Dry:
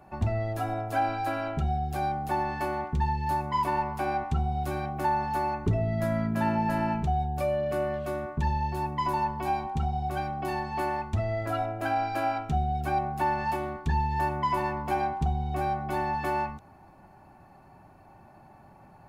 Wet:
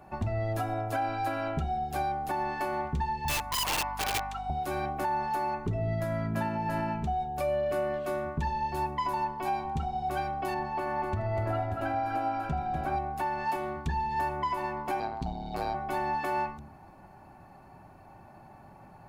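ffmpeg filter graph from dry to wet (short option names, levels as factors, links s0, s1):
-filter_complex "[0:a]asettb=1/sr,asplit=3[s0][s1][s2];[s0]atrim=end=3.254[s3];[s1]atrim=start=3.25:end=4.5,asetpts=PTS-STARTPTS,afade=t=in:d=0.004:c=qsin,afade=t=out:st=1.246:d=0.004:c=qsin,highpass=f=730:w=0.5412,highpass=f=730:w=1.3066,aeval=exprs='(mod(20*val(0)+1,2)-1)/20':c=same,aeval=exprs='val(0)+0.00631*(sin(2*PI*50*n/s)+sin(2*PI*2*50*n/s)/2+sin(2*PI*3*50*n/s)/3+sin(2*PI*4*50*n/s)/4+sin(2*PI*5*50*n/s)/5)':c=same[s4];[s2]atrim=start=4.496[s5];[s3][s4]acrossfade=d=0.004:c1=hsin:c2=qsin[s6];[s6][s5]acrossfade=d=0.004:c1=qsin:c2=hsin,asettb=1/sr,asplit=3[s7][s8][s9];[s7]atrim=end=10.544[s10];[s8]atrim=start=10.54:end=12.96,asetpts=PTS-STARTPTS,afade=t=in:d=0.004:c=qsin,afade=t=out:st=2.416:d=0.004:c=qsin,highshelf=f=2700:g=-10,aecho=1:1:80|245|583|798:0.251|0.501|0.355|0.126,atrim=end_sample=106722[s11];[s9]atrim=start=12.956[s12];[s10][s11]acrossfade=d=0.004:c1=hsin:c2=qsin[s13];[s13][s12]acrossfade=d=0.004:c1=qsin:c2=hsin,asettb=1/sr,asplit=3[s14][s15][s16];[s14]atrim=end=15.004[s17];[s15]atrim=start=15:end=15.75,asetpts=PTS-STARTPTS,afade=t=in:d=0.004:c=qsin,afade=t=out:st=0.746:d=0.004:c=qsin,equalizer=f=4400:w=4.4:g=15,tremolo=f=110:d=0.919[s18];[s16]atrim=start=15.746[s19];[s17][s18]acrossfade=d=0.004:c1=hsin:c2=qsin[s20];[s20][s19]acrossfade=d=0.004:c1=qsin:c2=hsin,bandreject=f=73.06:t=h:w=4,bandreject=f=146.12:t=h:w=4,bandreject=f=219.18:t=h:w=4,bandreject=f=292.24:t=h:w=4,bandreject=f=365.3:t=h:w=4,alimiter=limit=0.0708:level=0:latency=1:release=331,volume=1.19"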